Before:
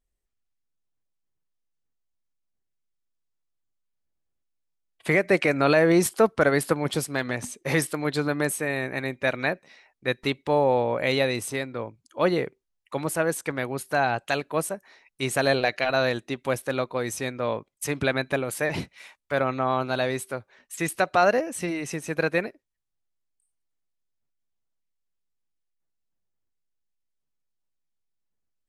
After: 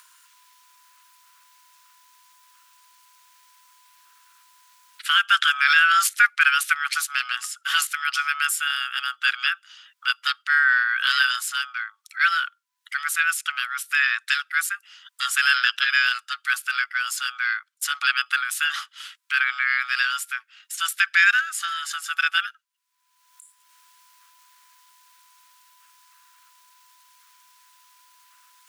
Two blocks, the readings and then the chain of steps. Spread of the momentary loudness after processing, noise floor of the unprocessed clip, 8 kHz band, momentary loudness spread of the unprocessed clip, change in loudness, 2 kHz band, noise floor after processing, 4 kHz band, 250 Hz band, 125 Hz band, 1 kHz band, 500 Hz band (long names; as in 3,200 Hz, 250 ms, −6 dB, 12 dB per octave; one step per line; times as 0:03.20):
12 LU, −79 dBFS, +5.0 dB, 11 LU, +4.0 dB, +10.0 dB, −69 dBFS, +11.0 dB, below −40 dB, below −40 dB, +2.5 dB, below −40 dB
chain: ring modulation 1,000 Hz
elliptic high-pass filter 1,400 Hz, stop band 60 dB
upward compression, threshold −40 dBFS
level +9 dB